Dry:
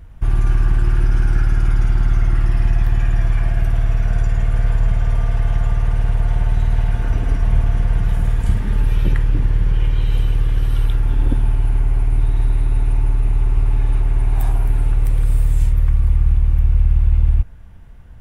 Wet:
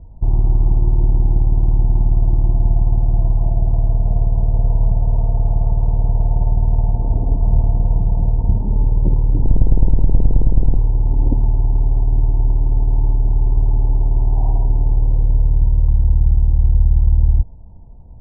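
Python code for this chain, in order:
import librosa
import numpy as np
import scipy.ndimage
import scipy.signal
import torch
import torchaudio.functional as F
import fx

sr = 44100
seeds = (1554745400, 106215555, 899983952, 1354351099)

y = fx.octave_divider(x, sr, octaves=2, level_db=3.0, at=(9.41, 10.77))
y = scipy.signal.sosfilt(scipy.signal.cheby1(6, 1.0, 960.0, 'lowpass', fs=sr, output='sos'), y)
y = y * 10.0 ** (2.0 / 20.0)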